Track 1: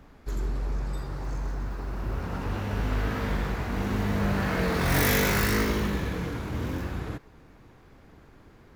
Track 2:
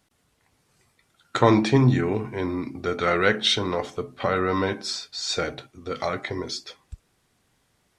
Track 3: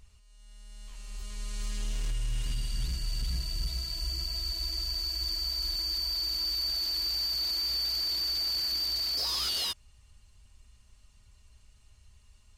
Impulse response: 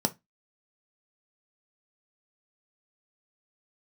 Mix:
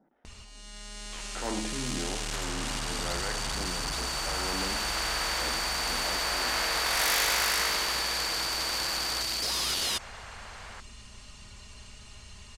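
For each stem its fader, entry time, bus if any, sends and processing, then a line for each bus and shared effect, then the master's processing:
+1.5 dB, 2.05 s, no send, high-pass filter 700 Hz 24 dB per octave
−17.5 dB, 0.00 s, send −7.5 dB, low-pass filter 1,700 Hz 12 dB per octave; transient designer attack −10 dB, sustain +2 dB; phaser with staggered stages 1 Hz
+3.0 dB, 0.25 s, no send, soft clipping −28.5 dBFS, distortion −18 dB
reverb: on, RT60 0.20 s, pre-delay 3 ms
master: low-pass filter 7,500 Hz 12 dB per octave; every bin compressed towards the loudest bin 2 to 1

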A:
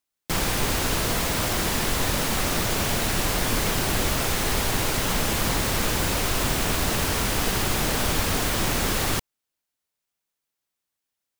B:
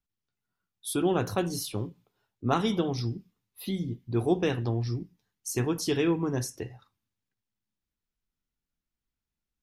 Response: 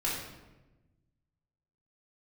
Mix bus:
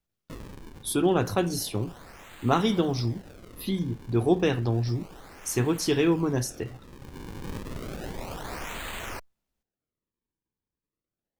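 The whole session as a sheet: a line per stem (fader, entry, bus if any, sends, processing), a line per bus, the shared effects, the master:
−7.5 dB, 0.00 s, no send, guitar amp tone stack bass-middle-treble 10-0-10; notch filter 4,800 Hz, Q 5.2; sample-and-hold swept by an LFO 38×, swing 160% 0.31 Hz; automatic ducking −11 dB, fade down 0.70 s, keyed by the second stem
+3.0 dB, 0.00 s, no send, no processing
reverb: not used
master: no processing

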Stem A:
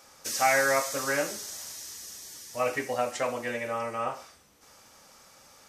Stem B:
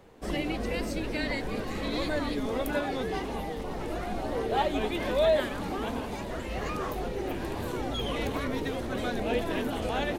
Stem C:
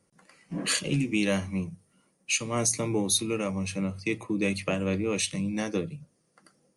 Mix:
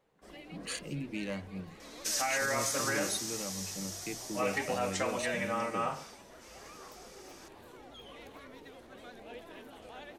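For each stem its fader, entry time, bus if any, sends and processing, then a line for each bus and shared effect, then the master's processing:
−1.5 dB, 1.80 s, no send, meter weighting curve A; brickwall limiter −22 dBFS, peak gain reduction 10 dB; bass and treble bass +15 dB, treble +3 dB
−16.0 dB, 0.00 s, no send, low-shelf EQ 260 Hz −10.5 dB; pitch vibrato 11 Hz 44 cents
−11.5 dB, 0.00 s, no send, adaptive Wiener filter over 9 samples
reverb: not used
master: no processing

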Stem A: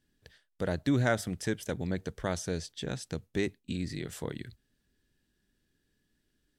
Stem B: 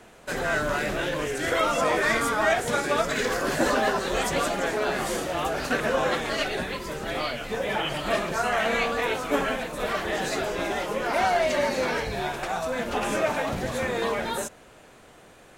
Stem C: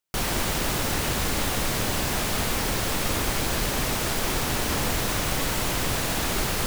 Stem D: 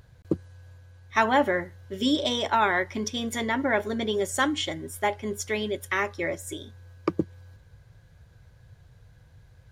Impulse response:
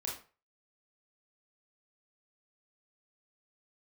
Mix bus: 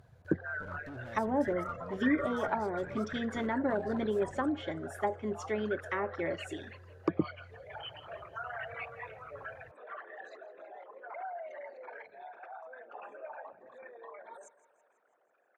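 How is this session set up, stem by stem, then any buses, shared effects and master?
−5.5 dB, 0.00 s, no send, no echo send, tube saturation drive 38 dB, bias 0.7
−5.0 dB, 0.00 s, no send, echo send −18 dB, spectral envelope exaggerated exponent 3; high-pass filter 1,400 Hz 12 dB per octave
muted
−3.5 dB, 0.00 s, no send, no echo send, high-pass filter 87 Hz 12 dB per octave; treble cut that deepens with the level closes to 560 Hz, closed at −19.5 dBFS; high-shelf EQ 6,200 Hz +8 dB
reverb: not used
echo: repeating echo 164 ms, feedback 57%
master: high-shelf EQ 2,100 Hz −11.5 dB

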